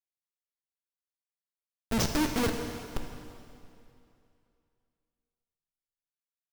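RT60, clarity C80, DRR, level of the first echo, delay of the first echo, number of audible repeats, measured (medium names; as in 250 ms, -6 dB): 2.7 s, 6.0 dB, 4.0 dB, no echo, no echo, no echo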